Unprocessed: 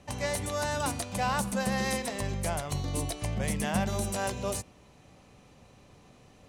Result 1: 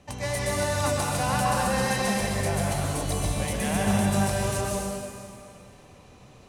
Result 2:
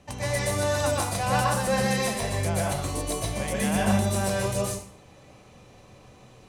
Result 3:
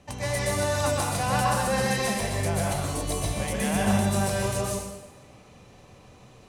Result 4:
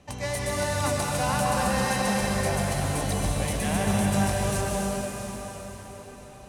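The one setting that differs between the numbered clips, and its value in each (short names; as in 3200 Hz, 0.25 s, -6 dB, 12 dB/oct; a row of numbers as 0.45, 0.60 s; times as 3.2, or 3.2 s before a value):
plate-style reverb, RT60: 2.4, 0.51, 1.1, 5.2 s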